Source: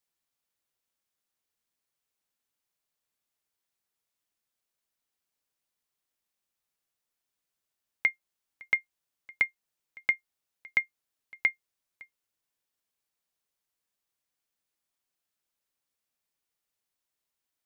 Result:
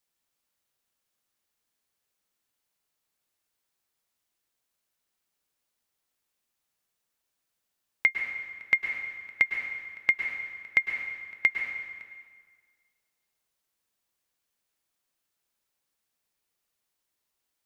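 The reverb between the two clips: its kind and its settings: plate-style reverb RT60 1.7 s, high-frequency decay 0.8×, pre-delay 95 ms, DRR 3.5 dB; gain +3 dB

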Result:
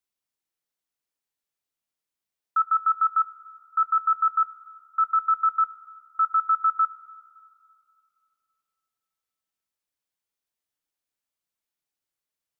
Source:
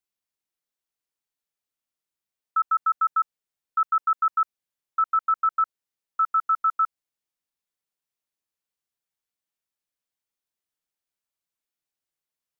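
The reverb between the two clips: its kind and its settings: FDN reverb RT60 2.5 s, low-frequency decay 0.95×, high-frequency decay 0.55×, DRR 13.5 dB

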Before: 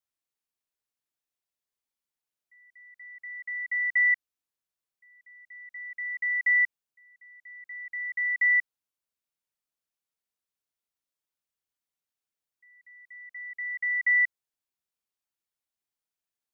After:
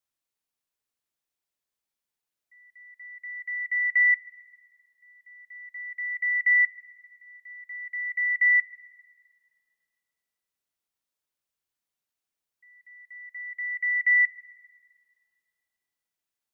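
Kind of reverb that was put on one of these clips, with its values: spring tank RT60 1.9 s, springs 47/60 ms, chirp 35 ms, DRR 14 dB; gain +2 dB

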